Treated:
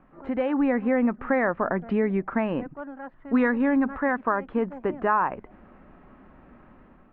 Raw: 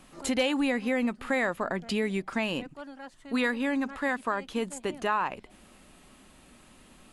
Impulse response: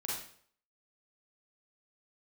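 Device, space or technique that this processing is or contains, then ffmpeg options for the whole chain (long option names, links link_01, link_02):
action camera in a waterproof case: -filter_complex "[0:a]asettb=1/sr,asplit=3[link_01][link_02][link_03];[link_01]atrim=end=3.324[link_04];[link_02]atrim=start=3.32:end=3.98,asetpts=PTS-STARTPTS,afade=type=in:duration=0.004:curve=qsin,afade=type=out:start_time=0.656:duration=0.004:curve=qsin,bass=frequency=250:gain=4,treble=frequency=4000:gain=9[link_05];[link_03]atrim=start=3.976[link_06];[link_04][link_05]acrossfade=duration=0.004:curve1=hsin:curve2=qsin[link_07];[link_07][link_06]acrossfade=duration=0.004:curve1=qsin:curve2=hsin,lowpass=frequency=1700:width=0.5412,lowpass=frequency=1700:width=1.3066,dynaudnorm=framelen=190:gausssize=5:maxgain=7dB,volume=-1.5dB" -ar 48000 -c:a aac -b:a 128k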